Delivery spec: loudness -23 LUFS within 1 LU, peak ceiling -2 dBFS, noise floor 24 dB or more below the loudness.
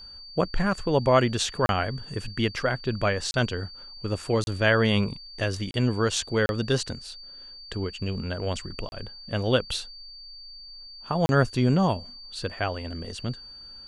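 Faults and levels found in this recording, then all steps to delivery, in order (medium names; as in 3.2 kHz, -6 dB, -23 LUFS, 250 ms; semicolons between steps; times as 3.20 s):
dropouts 7; longest dropout 31 ms; steady tone 4.6 kHz; tone level -42 dBFS; loudness -26.5 LUFS; peak level -8.0 dBFS; loudness target -23.0 LUFS
-> interpolate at 1.66/3.31/4.44/5.71/6.46/8.89/11.26 s, 31 ms; band-stop 4.6 kHz, Q 30; trim +3.5 dB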